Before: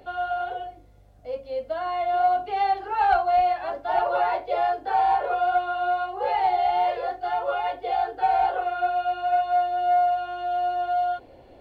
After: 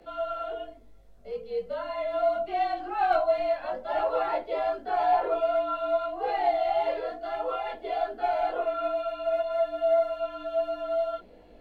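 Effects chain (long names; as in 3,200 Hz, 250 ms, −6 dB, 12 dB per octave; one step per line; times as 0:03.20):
frequency shifter −52 Hz
hum removal 74.83 Hz, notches 12
multi-voice chorus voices 4, 0.72 Hz, delay 19 ms, depth 3 ms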